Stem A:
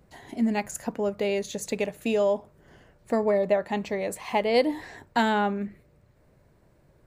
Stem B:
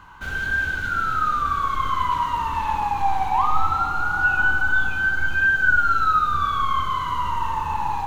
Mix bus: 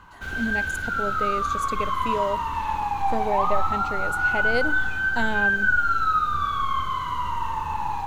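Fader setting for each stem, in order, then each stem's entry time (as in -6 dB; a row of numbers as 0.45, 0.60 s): -4.0, -3.0 dB; 0.00, 0.00 s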